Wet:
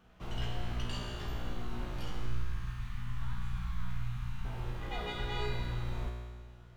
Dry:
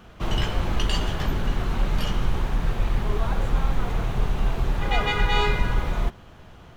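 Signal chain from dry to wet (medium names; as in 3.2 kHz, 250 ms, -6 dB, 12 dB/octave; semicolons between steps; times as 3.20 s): 2.26–4.45 s: Chebyshev band-stop 170–1200 Hz, order 2; feedback comb 60 Hz, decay 1.7 s, harmonics all, mix 90%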